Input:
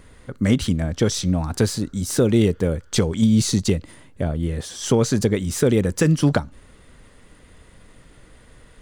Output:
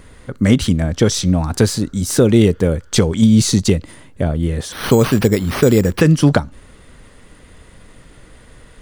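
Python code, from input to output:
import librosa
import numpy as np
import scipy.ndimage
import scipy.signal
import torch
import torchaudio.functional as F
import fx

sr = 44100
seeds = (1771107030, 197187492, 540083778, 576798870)

y = fx.resample_bad(x, sr, factor=6, down='none', up='hold', at=(4.72, 6.01))
y = y * librosa.db_to_amplitude(5.5)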